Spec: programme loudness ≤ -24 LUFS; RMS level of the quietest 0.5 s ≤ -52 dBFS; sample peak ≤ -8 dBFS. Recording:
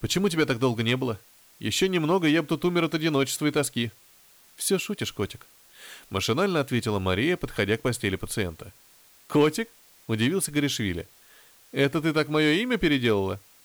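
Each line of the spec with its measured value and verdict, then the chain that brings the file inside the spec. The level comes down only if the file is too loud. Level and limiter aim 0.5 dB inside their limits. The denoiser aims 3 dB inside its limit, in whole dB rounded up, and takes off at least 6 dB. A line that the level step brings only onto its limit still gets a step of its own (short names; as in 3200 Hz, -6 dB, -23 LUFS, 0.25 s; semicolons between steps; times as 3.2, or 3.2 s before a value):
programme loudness -25.5 LUFS: OK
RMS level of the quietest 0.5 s -56 dBFS: OK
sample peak -12.0 dBFS: OK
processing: none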